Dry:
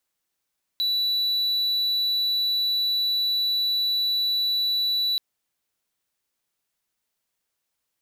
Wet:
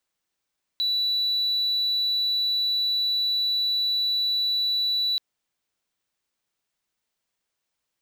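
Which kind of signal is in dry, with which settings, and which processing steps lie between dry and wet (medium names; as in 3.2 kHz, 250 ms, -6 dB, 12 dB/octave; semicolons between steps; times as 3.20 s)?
tone triangle 3.95 kHz -19 dBFS 4.38 s
peaking EQ 13 kHz -10 dB 0.63 oct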